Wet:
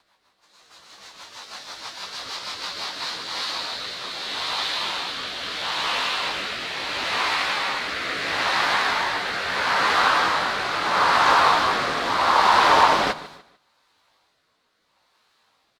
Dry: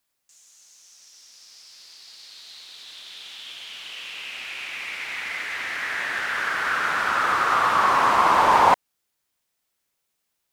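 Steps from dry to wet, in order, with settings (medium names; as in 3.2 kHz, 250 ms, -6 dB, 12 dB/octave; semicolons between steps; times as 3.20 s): spectral levelling over time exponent 0.4; gate -32 dBFS, range -26 dB; peaking EQ 4.1 kHz +12 dB 0.67 oct; de-hum 77.06 Hz, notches 5; in parallel at -2 dB: compression, threshold -32 dBFS, peak gain reduction 21 dB; on the sum: plain phase-vocoder stretch 1.5×; rotary cabinet horn 6.3 Hz, later 0.75 Hz, at 2.61 s; on a send: feedback delay 148 ms, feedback 34%, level -16.5 dB; on the sum: loudspeaker Doppler distortion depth 0.27 ms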